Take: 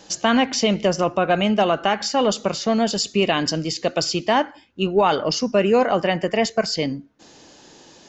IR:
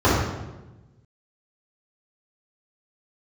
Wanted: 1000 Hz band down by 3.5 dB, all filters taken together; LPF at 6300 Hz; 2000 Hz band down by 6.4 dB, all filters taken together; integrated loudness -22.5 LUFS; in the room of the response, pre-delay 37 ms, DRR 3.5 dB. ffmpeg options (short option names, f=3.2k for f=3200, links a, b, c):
-filter_complex "[0:a]lowpass=6.3k,equalizer=f=1k:t=o:g=-3.5,equalizer=f=2k:t=o:g=-7.5,asplit=2[a][b];[1:a]atrim=start_sample=2205,adelay=37[c];[b][c]afir=irnorm=-1:irlink=0,volume=-26.5dB[d];[a][d]amix=inputs=2:normalize=0,volume=-4dB"